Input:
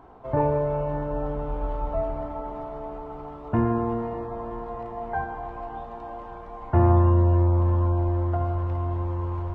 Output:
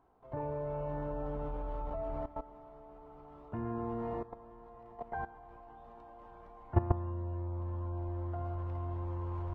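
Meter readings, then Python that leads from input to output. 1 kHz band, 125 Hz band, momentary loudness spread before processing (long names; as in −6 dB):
−12.5 dB, −14.0 dB, 17 LU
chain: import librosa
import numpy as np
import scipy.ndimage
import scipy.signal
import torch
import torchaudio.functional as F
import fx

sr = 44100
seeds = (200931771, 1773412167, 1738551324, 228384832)

y = fx.level_steps(x, sr, step_db=16)
y = y * librosa.db_to_amplitude(-5.0)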